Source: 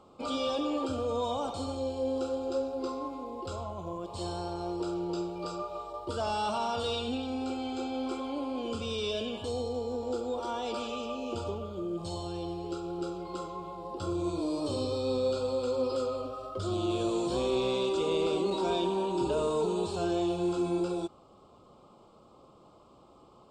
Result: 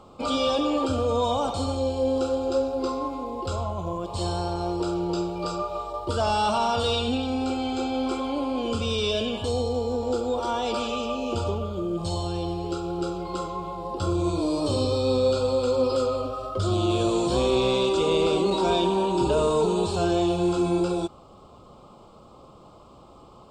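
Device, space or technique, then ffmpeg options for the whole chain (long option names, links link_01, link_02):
low shelf boost with a cut just above: -af "lowshelf=frequency=84:gain=7,equalizer=frequency=340:width_type=o:width=1:gain=-2.5,volume=8dB"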